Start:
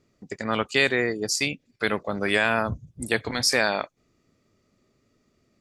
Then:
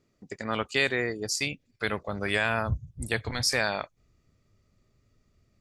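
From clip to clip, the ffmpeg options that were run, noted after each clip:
ffmpeg -i in.wav -af "asubboost=boost=6:cutoff=110,volume=-4dB" out.wav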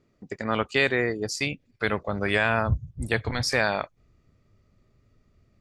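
ffmpeg -i in.wav -af "highshelf=frequency=4600:gain=-11.5,volume=4.5dB" out.wav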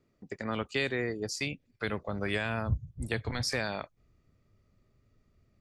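ffmpeg -i in.wav -filter_complex "[0:a]acrossover=split=400|3000[link_01][link_02][link_03];[link_02]acompressor=threshold=-30dB:ratio=2.5[link_04];[link_01][link_04][link_03]amix=inputs=3:normalize=0,volume=-5dB" out.wav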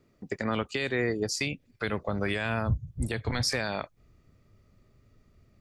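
ffmpeg -i in.wav -af "alimiter=limit=-24dB:level=0:latency=1:release=261,volume=6.5dB" out.wav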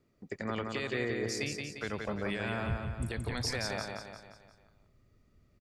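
ffmpeg -i in.wav -af "aecho=1:1:175|350|525|700|875|1050:0.631|0.303|0.145|0.0698|0.0335|0.0161,volume=-6.5dB" out.wav

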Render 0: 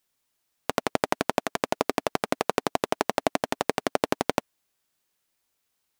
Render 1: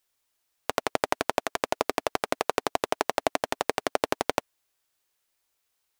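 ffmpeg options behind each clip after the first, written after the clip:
ffmpeg -i in.wav -af "equalizer=frequency=190:width=1.4:gain=-11" out.wav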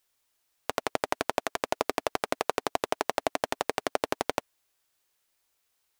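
ffmpeg -i in.wav -af "alimiter=limit=-8.5dB:level=0:latency=1:release=45,volume=1.5dB" out.wav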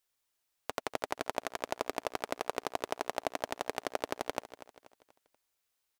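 ffmpeg -i in.wav -af "aecho=1:1:241|482|723|964:0.188|0.0772|0.0317|0.013,volume=-6.5dB" out.wav

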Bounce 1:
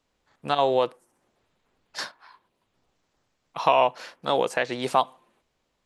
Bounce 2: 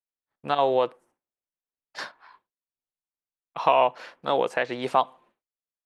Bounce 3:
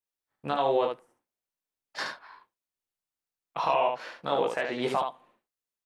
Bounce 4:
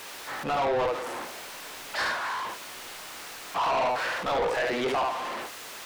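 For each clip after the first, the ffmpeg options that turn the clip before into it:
ffmpeg -i in.wav -af "agate=range=-33dB:threshold=-51dB:ratio=3:detection=peak,bass=frequency=250:gain=-3,treble=frequency=4000:gain=-10" out.wav
ffmpeg -i in.wav -filter_complex "[0:a]alimiter=limit=-16.5dB:level=0:latency=1:release=247,asplit=2[link_01][link_02];[link_02]aecho=0:1:21|73:0.562|0.596[link_03];[link_01][link_03]amix=inputs=2:normalize=0" out.wav
ffmpeg -i in.wav -filter_complex "[0:a]aeval=exprs='val(0)+0.5*0.0178*sgn(val(0))':channel_layout=same,asplit=2[link_01][link_02];[link_02]highpass=frequency=720:poles=1,volume=19dB,asoftclip=type=tanh:threshold=-12.5dB[link_03];[link_01][link_03]amix=inputs=2:normalize=0,lowpass=frequency=2200:poles=1,volume=-6dB,asoftclip=type=tanh:threshold=-20dB,volume=-2dB" out.wav

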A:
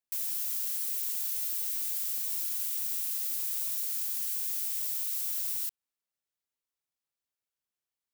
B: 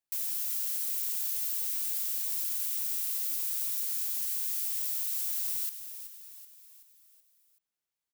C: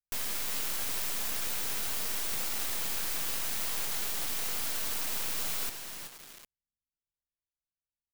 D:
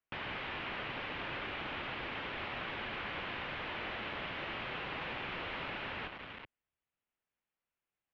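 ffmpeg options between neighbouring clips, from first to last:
ffmpeg -i in.wav -filter_complex "[0:a]asplit=6[link_01][link_02][link_03][link_04][link_05][link_06];[link_02]adelay=378,afreqshift=-50,volume=-11dB[link_07];[link_03]adelay=756,afreqshift=-100,volume=-17dB[link_08];[link_04]adelay=1134,afreqshift=-150,volume=-23dB[link_09];[link_05]adelay=1512,afreqshift=-200,volume=-29.1dB[link_10];[link_06]adelay=1890,afreqshift=-250,volume=-35.1dB[link_11];[link_01][link_07][link_08][link_09][link_10][link_11]amix=inputs=6:normalize=0" out.wav
ffmpeg -i in.wav -filter_complex "[0:a]aecho=1:1:4.3:0.38,acrossover=split=150[link_01][link_02];[link_02]acrusher=bits=4:dc=4:mix=0:aa=0.000001[link_03];[link_01][link_03]amix=inputs=2:normalize=0,highshelf=frequency=6900:gain=-4,volume=4.5dB" out.wav
ffmpeg -i in.wav -af "asoftclip=type=hard:threshold=-32.5dB,highpass=frequency=160:width_type=q:width=0.5412,highpass=frequency=160:width_type=q:width=1.307,lowpass=frequency=3100:width_type=q:width=0.5176,lowpass=frequency=3100:width_type=q:width=0.7071,lowpass=frequency=3100:width_type=q:width=1.932,afreqshift=-130,volume=9dB" out.wav

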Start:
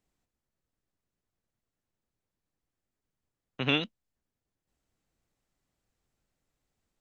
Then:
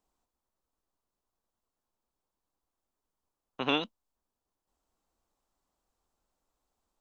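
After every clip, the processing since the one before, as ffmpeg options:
ffmpeg -i in.wav -af "equalizer=frequency=125:width_type=o:width=1:gain=-12,equalizer=frequency=1000:width_type=o:width=1:gain=9,equalizer=frequency=2000:width_type=o:width=1:gain=-8" out.wav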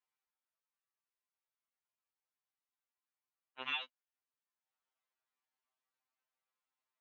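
ffmpeg -i in.wav -af "bandpass=frequency=2100:width_type=q:width=1.6:csg=0,afftfilt=real='re*2.45*eq(mod(b,6),0)':imag='im*2.45*eq(mod(b,6),0)':win_size=2048:overlap=0.75" out.wav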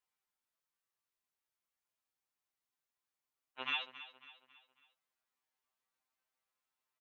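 ffmpeg -i in.wav -af "aecho=1:1:274|548|822|1096:0.188|0.0829|0.0365|0.016,volume=1.5dB" out.wav

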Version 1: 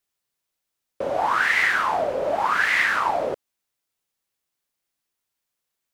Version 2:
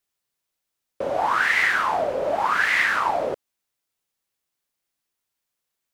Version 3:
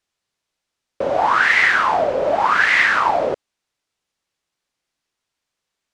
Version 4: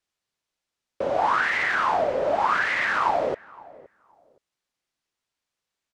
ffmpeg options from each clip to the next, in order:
ffmpeg -i in.wav -af anull out.wav
ffmpeg -i in.wav -af "lowpass=6700,volume=5.5dB" out.wav
ffmpeg -i in.wav -filter_complex "[0:a]acrossover=split=1200[link_01][link_02];[link_02]alimiter=limit=-14dB:level=0:latency=1:release=44[link_03];[link_01][link_03]amix=inputs=2:normalize=0,asplit=2[link_04][link_05];[link_05]adelay=518,lowpass=frequency=1300:poles=1,volume=-21dB,asplit=2[link_06][link_07];[link_07]adelay=518,lowpass=frequency=1300:poles=1,volume=0.23[link_08];[link_04][link_06][link_08]amix=inputs=3:normalize=0,volume=-5dB" out.wav

